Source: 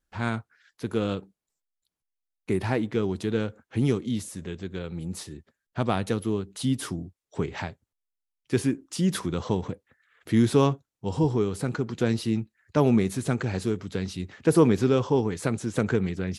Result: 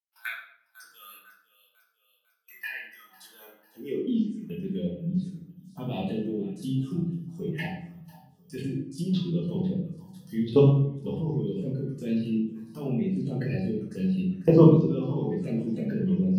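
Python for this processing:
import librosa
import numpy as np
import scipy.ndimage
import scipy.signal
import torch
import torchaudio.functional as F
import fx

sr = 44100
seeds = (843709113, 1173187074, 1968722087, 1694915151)

p1 = fx.bass_treble(x, sr, bass_db=-5, treble_db=-6)
p2 = fx.noise_reduce_blind(p1, sr, reduce_db=19)
p3 = fx.level_steps(p2, sr, step_db=19)
p4 = fx.filter_sweep_highpass(p3, sr, from_hz=1700.0, to_hz=150.0, start_s=3.03, end_s=4.38, q=2.5)
p5 = np.repeat(scipy.signal.resample_poly(p4, 1, 3), 3)[:len(p4)]
p6 = fx.high_shelf(p5, sr, hz=3100.0, db=10.0)
p7 = p6 + fx.echo_feedback(p6, sr, ms=499, feedback_pct=53, wet_db=-19, dry=0)
p8 = fx.env_phaser(p7, sr, low_hz=310.0, high_hz=1800.0, full_db=-30.5)
p9 = fx.env_lowpass_down(p8, sr, base_hz=2900.0, full_db=-31.5)
y = fx.room_shoebox(p9, sr, seeds[0], volume_m3=120.0, walls='mixed', distance_m=1.5)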